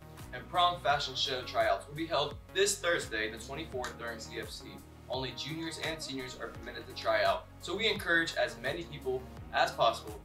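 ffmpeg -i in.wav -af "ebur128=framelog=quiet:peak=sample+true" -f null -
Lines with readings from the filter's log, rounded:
Integrated loudness:
  I:         -32.9 LUFS
  Threshold: -43.2 LUFS
Loudness range:
  LRA:         7.6 LU
  Threshold: -53.9 LUFS
  LRA low:   -39.2 LUFS
  LRA high:  -31.5 LUFS
Sample peak:
  Peak:      -14.0 dBFS
True peak:
  Peak:      -14.0 dBFS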